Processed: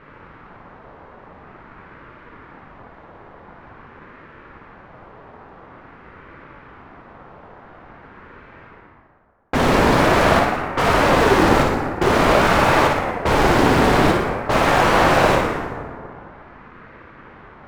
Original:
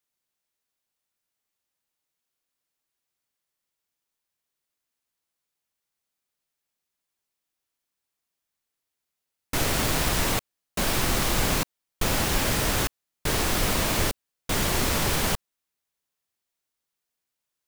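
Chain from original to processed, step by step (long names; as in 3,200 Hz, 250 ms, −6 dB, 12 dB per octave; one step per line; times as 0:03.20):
reversed playback
upward compression, threshold −31 dBFS
reversed playback
low-pass that shuts in the quiet parts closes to 1,000 Hz, open at −25.5 dBFS
spectral tilt −2.5 dB per octave
mid-hump overdrive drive 37 dB, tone 1,100 Hz, clips at −4 dBFS
on a send: flutter between parallel walls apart 9.8 metres, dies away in 0.62 s
on the sum: dense smooth reverb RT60 2.2 s, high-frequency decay 0.4×, DRR 2.5 dB
ring modulator whose carrier an LFO sweeps 500 Hz, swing 50%, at 0.47 Hz
level −2 dB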